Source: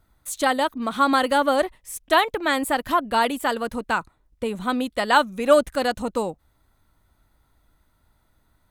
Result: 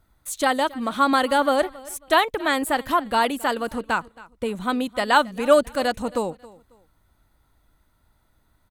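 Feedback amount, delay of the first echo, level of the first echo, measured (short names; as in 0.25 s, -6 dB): 29%, 0.272 s, -21.0 dB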